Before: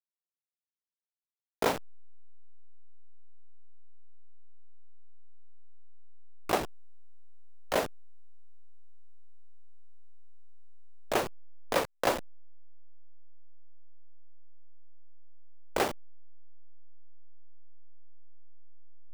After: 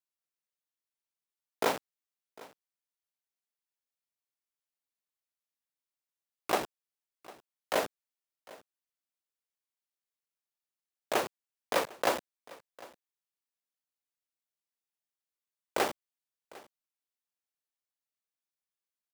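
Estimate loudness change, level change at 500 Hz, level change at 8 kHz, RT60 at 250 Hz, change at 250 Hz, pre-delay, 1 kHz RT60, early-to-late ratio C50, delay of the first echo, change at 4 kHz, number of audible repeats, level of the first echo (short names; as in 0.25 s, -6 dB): -1.0 dB, -1.0 dB, 0.0 dB, none, -3.0 dB, none, none, none, 0.752 s, 0.0 dB, 1, -21.5 dB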